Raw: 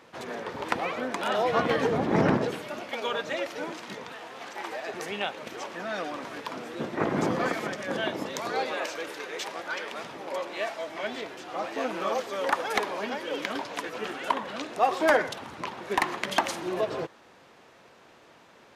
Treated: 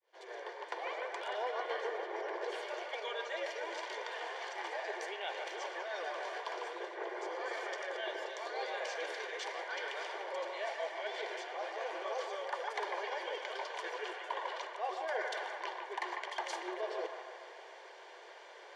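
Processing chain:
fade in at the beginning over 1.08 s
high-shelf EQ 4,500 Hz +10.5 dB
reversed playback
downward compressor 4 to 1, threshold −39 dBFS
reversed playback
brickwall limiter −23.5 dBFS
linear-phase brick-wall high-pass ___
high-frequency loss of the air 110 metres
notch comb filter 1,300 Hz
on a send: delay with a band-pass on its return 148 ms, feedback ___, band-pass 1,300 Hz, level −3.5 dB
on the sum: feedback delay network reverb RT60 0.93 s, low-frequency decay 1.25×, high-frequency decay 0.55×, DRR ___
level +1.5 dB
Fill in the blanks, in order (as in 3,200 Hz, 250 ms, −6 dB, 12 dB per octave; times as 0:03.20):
340 Hz, 63%, 19 dB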